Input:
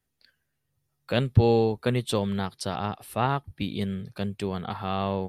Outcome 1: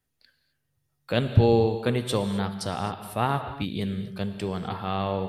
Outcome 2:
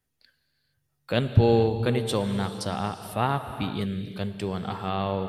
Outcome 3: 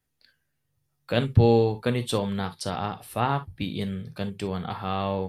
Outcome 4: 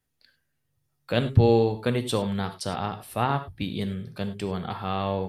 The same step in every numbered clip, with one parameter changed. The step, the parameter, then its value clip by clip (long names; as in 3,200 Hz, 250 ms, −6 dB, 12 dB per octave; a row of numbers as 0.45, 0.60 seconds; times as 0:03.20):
reverb whose tail is shaped and stops, gate: 290, 500, 80, 120 milliseconds